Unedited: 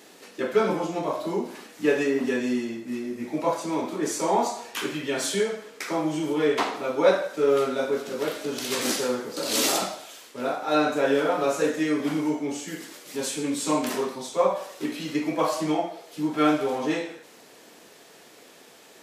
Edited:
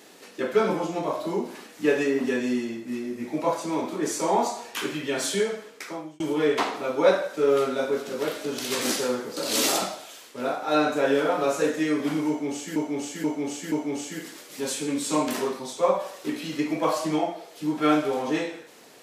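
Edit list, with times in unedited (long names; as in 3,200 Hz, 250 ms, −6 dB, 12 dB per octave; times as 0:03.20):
0:05.59–0:06.20: fade out
0:12.28–0:12.76: repeat, 4 plays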